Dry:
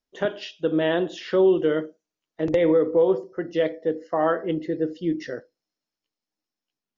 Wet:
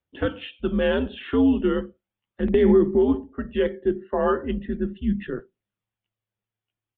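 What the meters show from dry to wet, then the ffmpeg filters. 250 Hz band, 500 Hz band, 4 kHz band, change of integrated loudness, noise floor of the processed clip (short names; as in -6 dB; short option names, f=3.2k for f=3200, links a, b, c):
+3.0 dB, -1.0 dB, -1.0 dB, +0.5 dB, under -85 dBFS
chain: -af "aresample=8000,aresample=44100,afreqshift=-110,aphaser=in_gain=1:out_gain=1:delay=2.9:decay=0.29:speed=0.37:type=triangular"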